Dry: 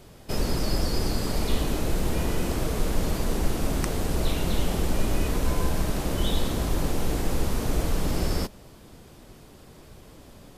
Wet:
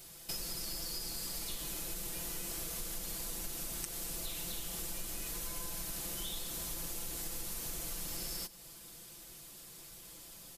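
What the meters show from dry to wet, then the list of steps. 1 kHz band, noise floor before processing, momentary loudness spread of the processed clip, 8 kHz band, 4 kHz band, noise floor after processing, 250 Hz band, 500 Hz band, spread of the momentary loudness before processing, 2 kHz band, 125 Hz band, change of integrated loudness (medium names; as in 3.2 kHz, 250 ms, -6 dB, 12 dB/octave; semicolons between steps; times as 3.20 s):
-17.5 dB, -49 dBFS, 11 LU, -1.5 dB, -7.5 dB, -53 dBFS, -21.0 dB, -20.5 dB, 1 LU, -13.0 dB, -23.0 dB, -11.0 dB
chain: pre-emphasis filter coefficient 0.9; comb 5.9 ms, depth 70%; compression 6:1, threshold -43 dBFS, peak gain reduction 14 dB; delay 100 ms -19 dB; trim +5.5 dB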